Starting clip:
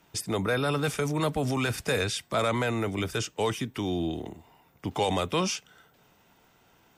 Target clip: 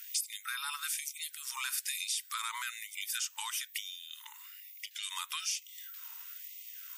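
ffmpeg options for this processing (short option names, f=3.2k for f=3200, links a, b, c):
-filter_complex "[0:a]aemphasis=mode=production:type=75fm,asettb=1/sr,asplit=3[a][b][c];[a]atrim=end=4.244[d];[b]atrim=start=4.24:end=5.03,asetpts=PTS-STARTPTS,afade=t=in:d=0.004:c=qsin,afade=t=out:st=0.786:d=0.004:c=qsin,acrossover=split=6700[e][f];[f]acompressor=threshold=-53dB:ratio=4:attack=1:release=60[g];[e][g]amix=inputs=2:normalize=0[h];[c]atrim=start=5.026[i];[d][h]acrossfade=d=0.004:c1=hsin:c2=qsin[j];[j][i]acrossfade=d=0.004:c1=qsin:c2=hsin,asplit=2[k][l];[l]alimiter=limit=-22dB:level=0:latency=1:release=107,volume=0.5dB[m];[k][m]amix=inputs=2:normalize=0,acompressor=threshold=-32dB:ratio=6,afftfilt=real='re*gte(b*sr/1024,850*pow(2000/850,0.5+0.5*sin(2*PI*1.1*pts/sr)))':imag='im*gte(b*sr/1024,850*pow(2000/850,0.5+0.5*sin(2*PI*1.1*pts/sr)))':win_size=1024:overlap=0.75"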